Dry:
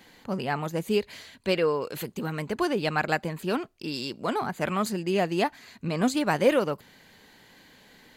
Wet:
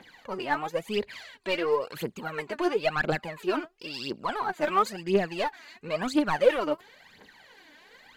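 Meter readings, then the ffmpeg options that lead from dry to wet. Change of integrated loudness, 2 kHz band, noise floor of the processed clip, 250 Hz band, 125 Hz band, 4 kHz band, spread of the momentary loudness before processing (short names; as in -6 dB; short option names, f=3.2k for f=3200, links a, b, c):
-1.0 dB, 0.0 dB, -57 dBFS, -3.5 dB, -7.0 dB, -1.5 dB, 10 LU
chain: -filter_complex "[0:a]asplit=2[a][b];[b]highpass=f=720:p=1,volume=15dB,asoftclip=type=tanh:threshold=-9dB[c];[a][c]amix=inputs=2:normalize=0,lowpass=f=2.2k:p=1,volume=-6dB,aphaser=in_gain=1:out_gain=1:delay=3.5:decay=0.73:speed=0.97:type=triangular,volume=-8dB"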